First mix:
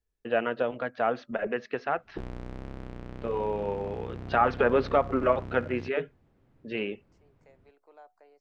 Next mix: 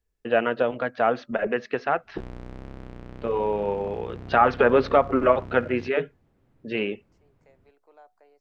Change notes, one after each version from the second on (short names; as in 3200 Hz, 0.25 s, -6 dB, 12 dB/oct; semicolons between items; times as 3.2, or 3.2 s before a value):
first voice +5.0 dB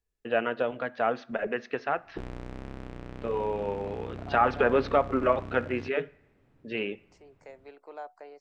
first voice -5.5 dB; second voice +11.5 dB; reverb: on, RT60 1.0 s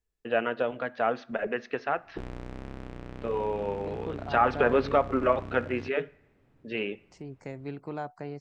second voice: remove ladder high-pass 410 Hz, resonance 30%